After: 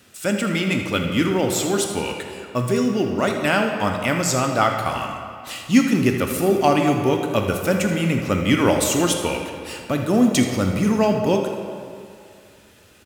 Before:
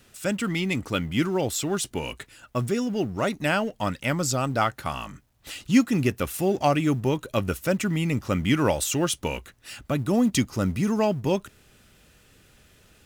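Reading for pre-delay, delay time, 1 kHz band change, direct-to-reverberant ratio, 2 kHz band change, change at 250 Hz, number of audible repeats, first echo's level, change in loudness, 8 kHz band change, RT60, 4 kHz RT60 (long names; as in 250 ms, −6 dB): 15 ms, 81 ms, +6.0 dB, 3.0 dB, +5.5 dB, +5.0 dB, 1, −12.0 dB, +5.0 dB, +5.0 dB, 2.4 s, 1.5 s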